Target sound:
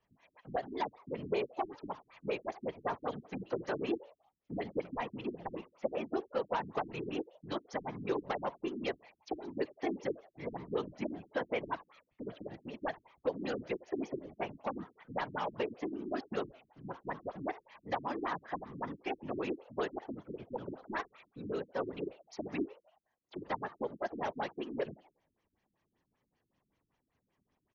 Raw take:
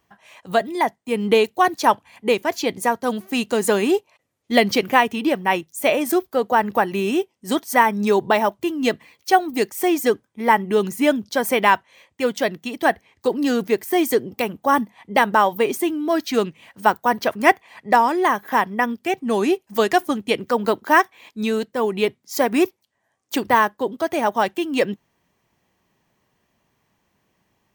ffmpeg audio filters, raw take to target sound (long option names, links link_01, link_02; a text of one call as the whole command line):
ffmpeg -i in.wav -filter_complex "[0:a]acrossover=split=380|2400|6200[link_01][link_02][link_03][link_04];[link_01]acompressor=threshold=-35dB:ratio=4[link_05];[link_02]acompressor=threshold=-19dB:ratio=4[link_06];[link_03]acompressor=threshold=-37dB:ratio=4[link_07];[link_04]acompressor=threshold=-42dB:ratio=4[link_08];[link_05][link_06][link_07][link_08]amix=inputs=4:normalize=0,acrossover=split=400[link_09][link_10];[link_10]asoftclip=type=hard:threshold=-19dB[link_11];[link_09][link_11]amix=inputs=2:normalize=0,asplit=5[link_12][link_13][link_14][link_15][link_16];[link_13]adelay=83,afreqshift=100,volume=-21dB[link_17];[link_14]adelay=166,afreqshift=200,volume=-26.8dB[link_18];[link_15]adelay=249,afreqshift=300,volume=-32.7dB[link_19];[link_16]adelay=332,afreqshift=400,volume=-38.5dB[link_20];[link_12][link_17][link_18][link_19][link_20]amix=inputs=5:normalize=0,afftfilt=real='hypot(re,im)*cos(2*PI*random(0))':imag='hypot(re,im)*sin(2*PI*random(1))':win_size=512:overlap=0.75,afftfilt=real='re*lt(b*sr/1024,330*pow(7100/330,0.5+0.5*sin(2*PI*5.2*pts/sr)))':imag='im*lt(b*sr/1024,330*pow(7100/330,0.5+0.5*sin(2*PI*5.2*pts/sr)))':win_size=1024:overlap=0.75,volume=-5.5dB" out.wav